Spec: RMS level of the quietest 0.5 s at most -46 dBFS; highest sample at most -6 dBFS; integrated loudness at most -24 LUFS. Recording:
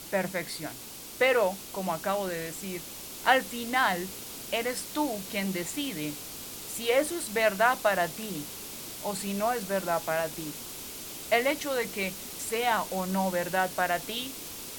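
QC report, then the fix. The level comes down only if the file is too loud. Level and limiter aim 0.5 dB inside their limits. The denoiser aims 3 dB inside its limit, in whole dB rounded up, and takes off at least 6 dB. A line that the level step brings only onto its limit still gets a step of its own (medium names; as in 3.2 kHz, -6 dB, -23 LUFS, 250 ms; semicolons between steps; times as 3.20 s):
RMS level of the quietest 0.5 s -43 dBFS: fail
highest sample -7.0 dBFS: pass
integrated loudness -29.5 LUFS: pass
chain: noise reduction 6 dB, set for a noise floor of -43 dBFS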